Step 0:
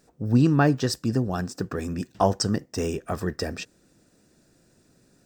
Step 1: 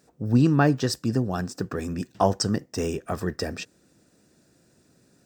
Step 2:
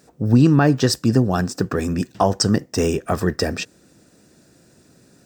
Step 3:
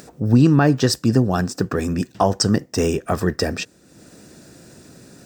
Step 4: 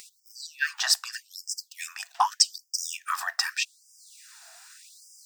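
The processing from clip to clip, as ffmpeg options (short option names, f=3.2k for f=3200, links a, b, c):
-af "highpass=62"
-af "alimiter=limit=-12dB:level=0:latency=1:release=210,volume=8dB"
-af "acompressor=mode=upward:threshold=-35dB:ratio=2.5"
-af "afftfilt=real='re*gte(b*sr/1024,630*pow(4900/630,0.5+0.5*sin(2*PI*0.83*pts/sr)))':imag='im*gte(b*sr/1024,630*pow(4900/630,0.5+0.5*sin(2*PI*0.83*pts/sr)))':win_size=1024:overlap=0.75,volume=1dB"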